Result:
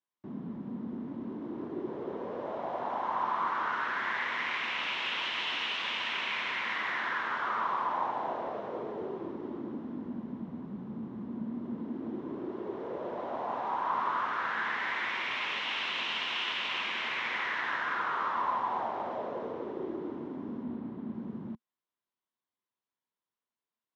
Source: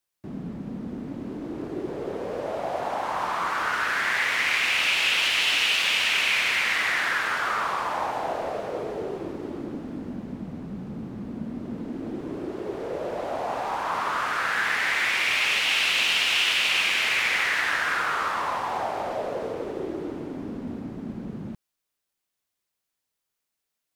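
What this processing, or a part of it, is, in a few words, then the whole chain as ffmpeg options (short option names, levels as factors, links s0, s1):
guitar cabinet: -filter_complex "[0:a]asettb=1/sr,asplit=3[s0][s1][s2];[s0]atrim=end=20.634[s3];[s1]atrim=start=20.63:end=21.14,asetpts=PTS-STARTPTS,afade=t=in:d=0.004:c=qsin,afade=t=out:st=0.506:d=0.004:c=qsin,lowpass=f=5000:w=0.5412,lowpass=f=5000:w=1.3066[s4];[s2]atrim=start=21.136[s5];[s3][s4]acrossfade=d=0.004:c1=hsin:c2=qsin[s6];[s6][s5]acrossfade=d=0.004:c1=qsin:c2=hsin,highpass=100,equalizer=f=230:t=q:w=4:g=7,equalizer=f=360:t=q:w=4:g=4,equalizer=f=1000:t=q:w=4:g=9,equalizer=f=2500:t=q:w=4:g=-5,equalizer=f=4600:t=q:w=4:g=-8,lowpass=f=4600:w=0.5412,lowpass=f=4600:w=1.3066,volume=0.376"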